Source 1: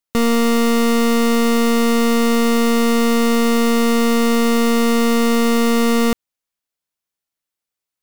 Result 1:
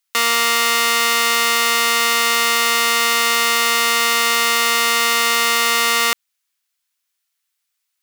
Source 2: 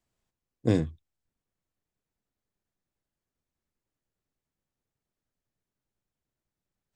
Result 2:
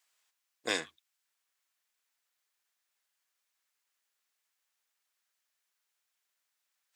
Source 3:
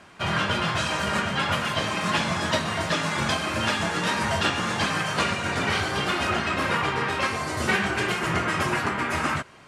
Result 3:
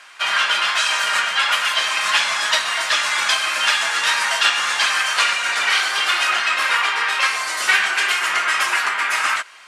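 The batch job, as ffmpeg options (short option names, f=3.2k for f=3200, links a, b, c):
-af "highpass=1.4k,acontrast=81,volume=3.5dB"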